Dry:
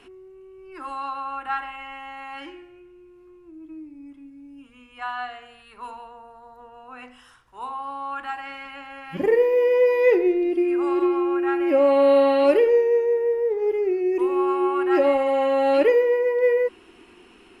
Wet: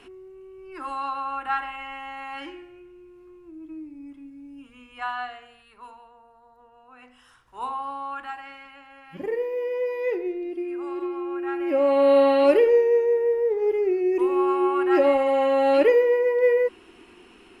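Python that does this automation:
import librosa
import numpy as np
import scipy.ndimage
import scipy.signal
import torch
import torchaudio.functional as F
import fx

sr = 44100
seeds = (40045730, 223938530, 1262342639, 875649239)

y = fx.gain(x, sr, db=fx.line((5.03, 1.0), (6.0, -9.0), (6.98, -9.0), (7.64, 2.5), (8.8, -9.0), (11.11, -9.0), (12.2, 0.0)))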